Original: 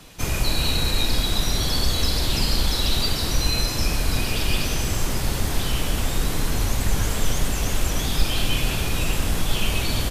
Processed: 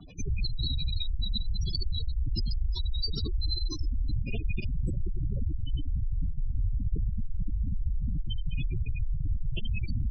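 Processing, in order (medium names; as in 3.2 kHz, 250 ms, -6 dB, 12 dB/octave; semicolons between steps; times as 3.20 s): 3.27–3.92 s: static phaser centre 620 Hz, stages 6; valve stage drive 25 dB, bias 0.4; spectral gate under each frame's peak -10 dB strong; trim +3 dB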